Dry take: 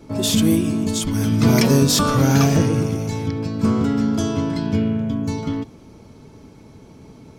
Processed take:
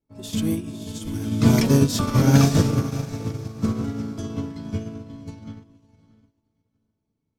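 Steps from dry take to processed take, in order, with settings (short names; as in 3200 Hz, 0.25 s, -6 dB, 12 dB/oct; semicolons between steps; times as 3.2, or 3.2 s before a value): low shelf 110 Hz +7 dB; on a send: diffused feedback echo 0.588 s, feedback 45%, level -6.5 dB; on the sum: upward expander 2.5:1, over -35 dBFS; gain -1 dB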